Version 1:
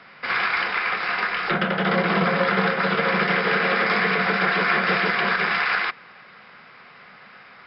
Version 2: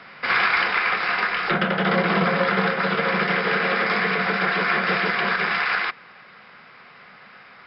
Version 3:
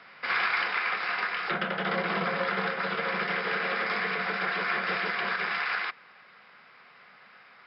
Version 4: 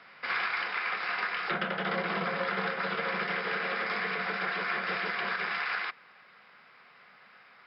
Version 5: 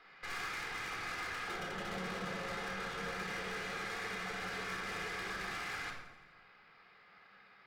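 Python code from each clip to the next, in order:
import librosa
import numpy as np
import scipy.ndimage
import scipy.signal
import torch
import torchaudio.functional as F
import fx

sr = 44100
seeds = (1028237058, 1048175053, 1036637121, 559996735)

y1 = fx.rider(x, sr, range_db=10, speed_s=2.0)
y2 = fx.low_shelf(y1, sr, hz=290.0, db=-7.5)
y2 = y2 * 10.0 ** (-7.0 / 20.0)
y3 = fx.rider(y2, sr, range_db=10, speed_s=0.5)
y3 = y3 * 10.0 ** (-2.5 / 20.0)
y4 = fx.tube_stage(y3, sr, drive_db=38.0, bias=0.75)
y4 = fx.echo_feedback(y4, sr, ms=84, feedback_pct=58, wet_db=-15)
y4 = fx.room_shoebox(y4, sr, seeds[0], volume_m3=2500.0, walls='furnished', distance_m=3.9)
y4 = y4 * 10.0 ** (-4.5 / 20.0)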